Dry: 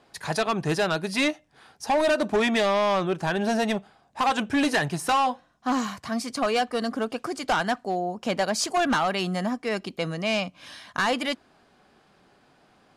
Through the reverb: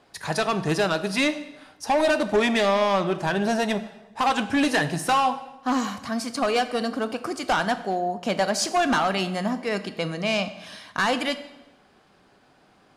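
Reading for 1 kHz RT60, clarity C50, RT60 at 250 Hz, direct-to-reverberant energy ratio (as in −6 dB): 0.95 s, 13.0 dB, 1.0 s, 10.5 dB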